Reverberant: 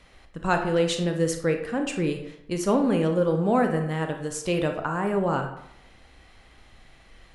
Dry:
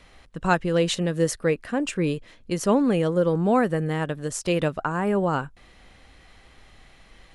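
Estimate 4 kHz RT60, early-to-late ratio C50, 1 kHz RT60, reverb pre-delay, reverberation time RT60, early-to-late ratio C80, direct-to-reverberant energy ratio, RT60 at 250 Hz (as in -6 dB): 0.45 s, 7.5 dB, 0.80 s, 25 ms, 0.80 s, 11.0 dB, 4.5 dB, 0.70 s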